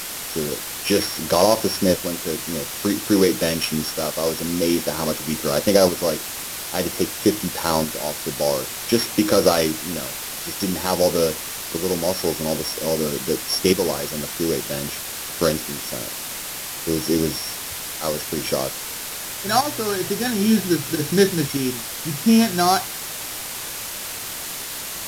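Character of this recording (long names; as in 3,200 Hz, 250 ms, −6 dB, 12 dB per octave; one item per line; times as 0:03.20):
a buzz of ramps at a fixed pitch in blocks of 8 samples
tremolo saw up 0.51 Hz, depth 60%
a quantiser's noise floor 6 bits, dither triangular
Ogg Vorbis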